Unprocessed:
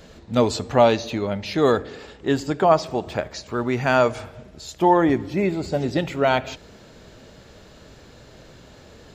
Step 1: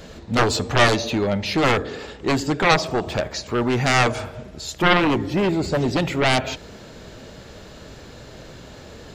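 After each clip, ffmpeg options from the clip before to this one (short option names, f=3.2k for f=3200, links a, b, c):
-af "aeval=exprs='0.708*(cos(1*acos(clip(val(0)/0.708,-1,1)))-cos(1*PI/2))+0.0891*(cos(3*acos(clip(val(0)/0.708,-1,1)))-cos(3*PI/2))+0.282*(cos(7*acos(clip(val(0)/0.708,-1,1)))-cos(7*PI/2))':c=same,volume=-1dB"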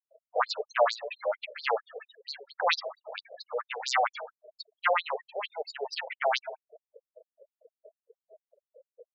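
-filter_complex "[0:a]asplit=2[a][b];[b]adelay=163.3,volume=-26dB,highshelf=f=4k:g=-3.67[c];[a][c]amix=inputs=2:normalize=0,afftfilt=real='re*gte(hypot(re,im),0.0282)':imag='im*gte(hypot(re,im),0.0282)':win_size=1024:overlap=0.75,afftfilt=real='re*between(b*sr/1024,560*pow(5800/560,0.5+0.5*sin(2*PI*4.4*pts/sr))/1.41,560*pow(5800/560,0.5+0.5*sin(2*PI*4.4*pts/sr))*1.41)':imag='im*between(b*sr/1024,560*pow(5800/560,0.5+0.5*sin(2*PI*4.4*pts/sr))/1.41,560*pow(5800/560,0.5+0.5*sin(2*PI*4.4*pts/sr))*1.41)':win_size=1024:overlap=0.75,volume=-2dB"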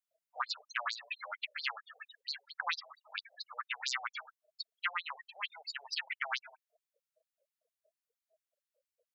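-af "highpass=f=1.2k:w=0.5412,highpass=f=1.2k:w=1.3066,acompressor=threshold=-33dB:ratio=6,volume=1dB"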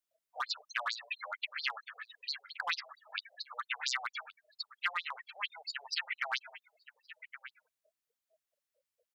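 -filter_complex "[0:a]acrossover=split=1700|2300[a][b][c];[a]asoftclip=type=hard:threshold=-33.5dB[d];[b]aecho=1:1:1121:0.562[e];[d][e][c]amix=inputs=3:normalize=0,volume=1.5dB"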